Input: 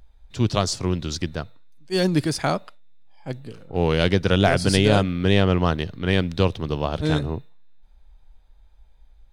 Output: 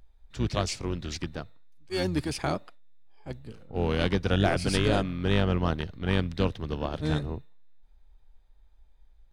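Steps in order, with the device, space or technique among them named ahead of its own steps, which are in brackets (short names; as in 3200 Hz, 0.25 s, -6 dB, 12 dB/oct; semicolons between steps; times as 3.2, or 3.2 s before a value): octave pedal (harmoniser -12 st -6 dB); gain -7.5 dB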